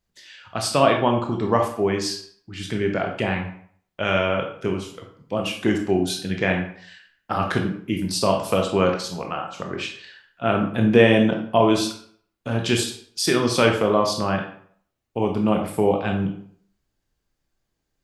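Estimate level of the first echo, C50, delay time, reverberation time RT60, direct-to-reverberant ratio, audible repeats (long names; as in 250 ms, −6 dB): no echo audible, 6.5 dB, no echo audible, 0.60 s, 2.0 dB, no echo audible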